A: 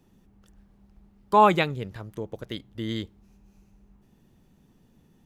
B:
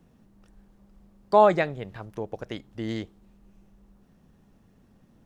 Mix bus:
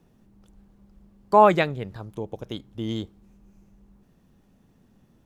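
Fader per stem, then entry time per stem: −4.5, −2.5 decibels; 0.00, 0.00 seconds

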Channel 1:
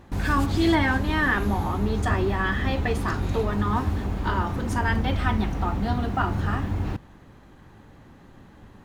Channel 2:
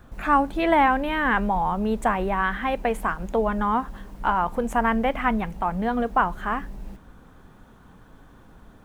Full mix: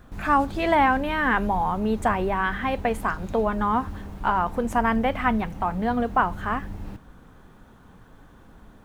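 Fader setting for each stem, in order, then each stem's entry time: −11.5, −0.5 decibels; 0.00, 0.00 seconds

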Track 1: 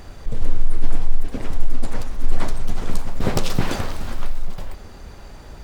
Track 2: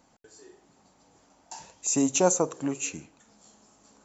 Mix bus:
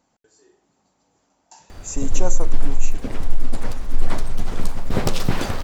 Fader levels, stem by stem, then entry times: 0.0, −5.0 decibels; 1.70, 0.00 seconds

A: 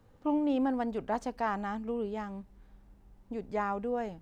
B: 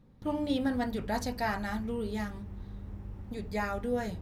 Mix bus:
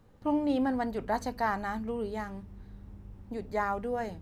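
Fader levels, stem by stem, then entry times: +0.5, −7.0 decibels; 0.00, 0.00 seconds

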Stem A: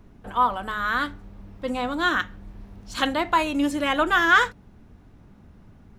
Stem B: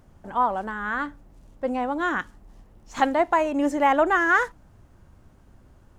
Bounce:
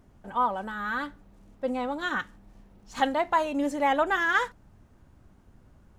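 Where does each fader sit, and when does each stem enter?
−11.0, −5.0 decibels; 0.00, 0.00 seconds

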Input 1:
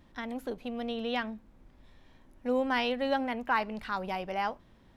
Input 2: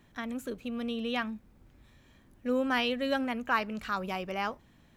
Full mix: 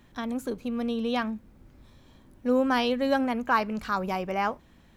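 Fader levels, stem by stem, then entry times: −3.0, +2.5 decibels; 0.00, 0.00 seconds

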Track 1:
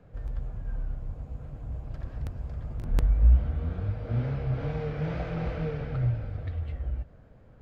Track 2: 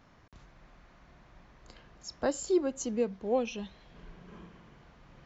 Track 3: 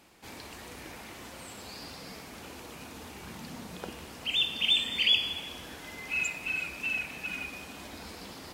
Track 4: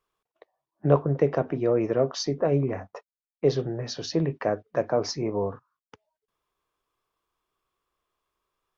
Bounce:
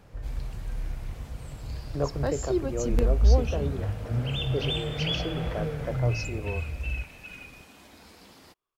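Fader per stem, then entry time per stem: 0.0, −0.5, −7.5, −8.5 decibels; 0.00, 0.00, 0.00, 1.10 seconds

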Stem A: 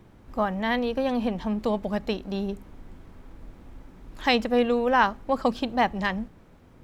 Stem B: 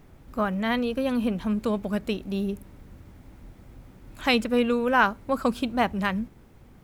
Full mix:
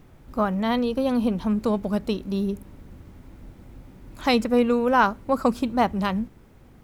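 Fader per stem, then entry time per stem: −6.0, 0.0 decibels; 0.00, 0.00 seconds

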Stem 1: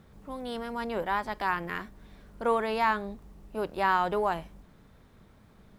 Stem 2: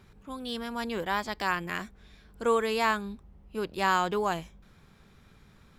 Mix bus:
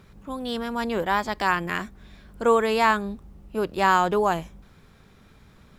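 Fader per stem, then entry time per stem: −2.5, +3.0 decibels; 0.00, 0.00 seconds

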